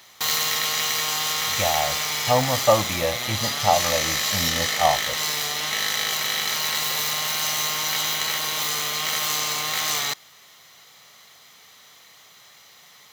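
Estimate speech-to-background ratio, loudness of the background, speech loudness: −2.5 dB, −22.5 LKFS, −25.0 LKFS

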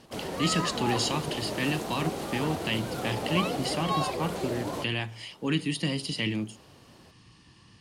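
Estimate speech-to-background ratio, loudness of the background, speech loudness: 2.0 dB, −33.0 LKFS, −31.0 LKFS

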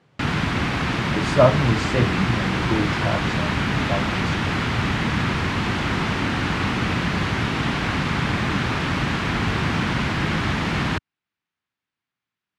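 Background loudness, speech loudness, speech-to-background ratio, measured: −23.0 LKFS, −24.5 LKFS, −1.5 dB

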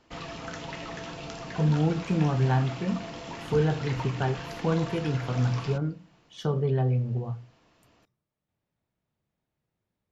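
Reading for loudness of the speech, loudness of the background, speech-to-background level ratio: −28.0 LKFS, −38.0 LKFS, 10.0 dB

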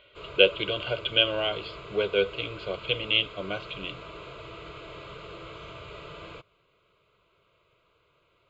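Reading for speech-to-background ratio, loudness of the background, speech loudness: 16.5 dB, −43.0 LKFS, −26.5 LKFS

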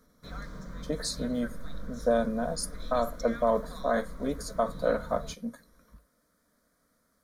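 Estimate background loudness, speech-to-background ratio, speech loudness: −44.0 LKFS, 13.0 dB, −31.0 LKFS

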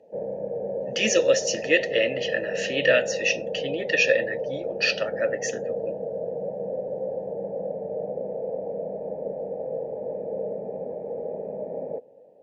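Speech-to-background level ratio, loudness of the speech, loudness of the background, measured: 7.0 dB, −24.5 LKFS, −31.5 LKFS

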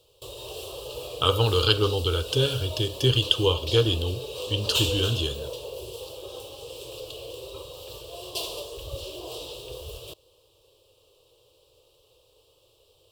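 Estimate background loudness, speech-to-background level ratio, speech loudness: −35.0 LKFS, 11.0 dB, −24.0 LKFS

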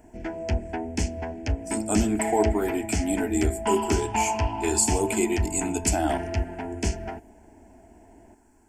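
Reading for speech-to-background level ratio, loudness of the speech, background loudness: 3.0 dB, −26.5 LKFS, −29.5 LKFS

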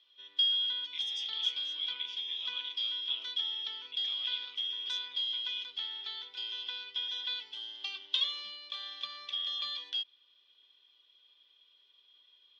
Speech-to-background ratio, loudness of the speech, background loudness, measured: −5.0 dB, −39.0 LKFS, −34.0 LKFS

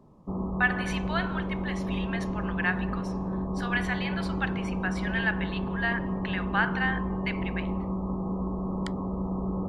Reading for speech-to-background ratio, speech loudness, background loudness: −0.5 dB, −32.0 LKFS, −31.5 LKFS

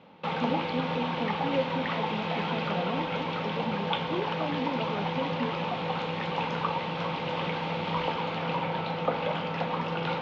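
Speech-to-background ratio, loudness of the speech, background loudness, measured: −5.0 dB, −36.0 LKFS, −31.0 LKFS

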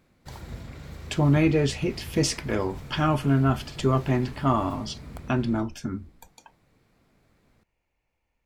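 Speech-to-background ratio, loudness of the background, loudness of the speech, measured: 16.0 dB, −41.5 LKFS, −25.5 LKFS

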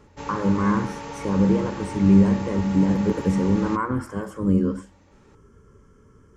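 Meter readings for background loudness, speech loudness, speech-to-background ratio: −35.0 LKFS, −22.0 LKFS, 13.0 dB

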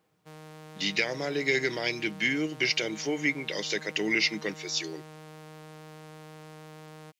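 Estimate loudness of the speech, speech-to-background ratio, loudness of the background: −28.5 LKFS, 19.0 dB, −47.5 LKFS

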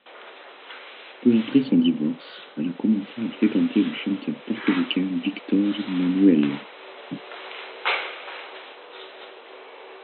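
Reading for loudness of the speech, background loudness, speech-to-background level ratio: −23.0 LKFS, −36.0 LKFS, 13.0 dB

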